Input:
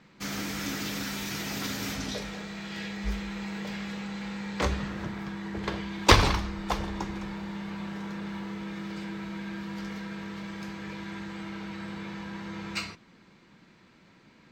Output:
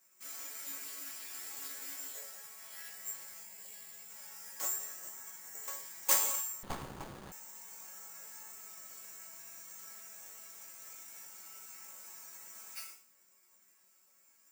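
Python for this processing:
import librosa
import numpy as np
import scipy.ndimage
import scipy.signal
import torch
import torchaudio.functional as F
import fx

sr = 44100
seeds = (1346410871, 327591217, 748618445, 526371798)

y = fx.peak_eq(x, sr, hz=1300.0, db=-9.5, octaves=1.3, at=(3.4, 4.1))
y = (np.kron(scipy.signal.resample_poly(y, 1, 6), np.eye(6)[0]) * 6)[:len(y)]
y = scipy.signal.sosfilt(scipy.signal.butter(2, 540.0, 'highpass', fs=sr, output='sos'), y)
y = fx.resonator_bank(y, sr, root=54, chord='minor', decay_s=0.38)
y = fx.buffer_crackle(y, sr, first_s=0.41, period_s=0.29, block=512, kind='repeat')
y = fx.running_max(y, sr, window=17, at=(6.63, 7.32))
y = y * 10.0 ** (1.5 / 20.0)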